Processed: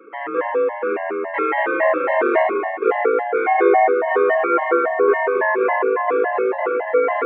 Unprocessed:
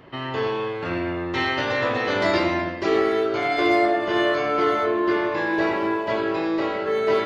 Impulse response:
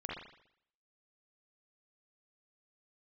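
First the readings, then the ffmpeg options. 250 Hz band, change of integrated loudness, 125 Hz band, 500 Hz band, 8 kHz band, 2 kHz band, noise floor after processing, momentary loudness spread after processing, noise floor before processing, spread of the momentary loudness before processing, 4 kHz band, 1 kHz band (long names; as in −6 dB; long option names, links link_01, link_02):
−3.0 dB, +4.0 dB, below −25 dB, +5.5 dB, can't be measured, +3.0 dB, −29 dBFS, 6 LU, −30 dBFS, 6 LU, below −15 dB, +6.0 dB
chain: -filter_complex "[0:a]highpass=frequency=250:width_type=q:width=0.5412,highpass=frequency=250:width_type=q:width=1.307,lowpass=frequency=2100:width_type=q:width=0.5176,lowpass=frequency=2100:width_type=q:width=0.7071,lowpass=frequency=2100:width_type=q:width=1.932,afreqshift=56,asplit=2[link_01][link_02];[1:a]atrim=start_sample=2205[link_03];[link_02][link_03]afir=irnorm=-1:irlink=0,volume=-5dB[link_04];[link_01][link_04]amix=inputs=2:normalize=0,afftfilt=real='re*gt(sin(2*PI*3.6*pts/sr)*(1-2*mod(floor(b*sr/1024/540),2)),0)':imag='im*gt(sin(2*PI*3.6*pts/sr)*(1-2*mod(floor(b*sr/1024/540),2)),0)':win_size=1024:overlap=0.75,volume=5dB"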